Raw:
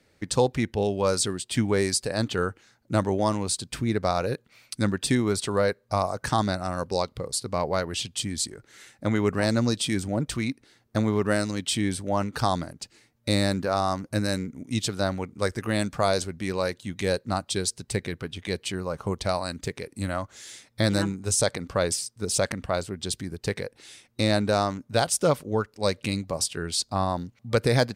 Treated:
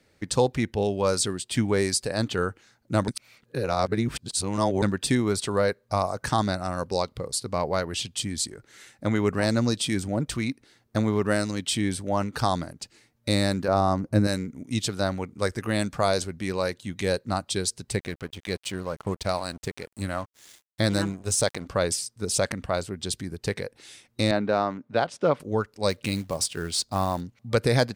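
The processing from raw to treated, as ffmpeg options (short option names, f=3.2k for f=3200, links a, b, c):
-filter_complex "[0:a]asettb=1/sr,asplit=3[a][b][c];[a]atrim=end=13.684[d];[b]atrim=start=13.68:end=14.27,asetpts=PTS-STARTPTS,afade=t=in:d=0.004:c=qsin,afade=t=out:st=0.586:d=0.004:c=qsin,tiltshelf=f=1.2k:g=6[e];[c]atrim=start=14.266[f];[d][e]acrossfade=d=0.004:c1=hsin:c2=qsin[g];[g][f]acrossfade=d=0.004:c1=qsin:c2=hsin,asettb=1/sr,asplit=3[h][i][j];[h]atrim=end=17.994[k];[i]atrim=start=17.99:end=21.66,asetpts=PTS-STARTPTS,afade=t=in:d=0.004:c=qsin,afade=t=out:st=3.666:d=0.004:c=qsin,aeval=exprs='sgn(val(0))*max(abs(val(0))-0.00668,0)':c=same[l];[j]atrim=start=21.656[m];[k][l]acrossfade=d=0.004:c1=hsin:c2=qsin[n];[n][m]acrossfade=d=0.004:c1=qsin:c2=hsin,asettb=1/sr,asplit=3[o][p][q];[o]atrim=end=24.314[r];[p]atrim=start=24.31:end=25.4,asetpts=PTS-STARTPTS,afade=t=in:d=0.004:c=qsin,afade=t=out:st=1.086:d=0.004:c=qsin,highpass=170,lowpass=2.6k[s];[q]atrim=start=25.396[t];[r][s]acrossfade=d=0.004:c1=hsin:c2=qsin[u];[u][t]acrossfade=d=0.004:c1=qsin:c2=hsin,asettb=1/sr,asplit=3[v][w][x];[v]atrim=end=25.904[y];[w]atrim=start=25.9:end=27.21,asetpts=PTS-STARTPTS,afade=t=in:d=0.004:c=qsin,afade=t=out:st=1.306:d=0.004:c=qsin,acrusher=bits=5:mode=log:mix=0:aa=0.000001[z];[x]atrim=start=27.206[aa];[y][z]acrossfade=d=0.004:c1=hsin:c2=qsin[ab];[ab][aa]acrossfade=d=0.004:c1=qsin:c2=hsin,asplit=3[ac][ad][ae];[ac]atrim=end=3.082[af];[ad]atrim=start=3.078:end=4.822,asetpts=PTS-STARTPTS,areverse[ag];[ae]atrim=start=4.818[ah];[af][ag]acrossfade=d=0.004:c1=hsin:c2=hsin[ai];[ai][ah]acrossfade=d=0.004:c1=hsin:c2=hsin"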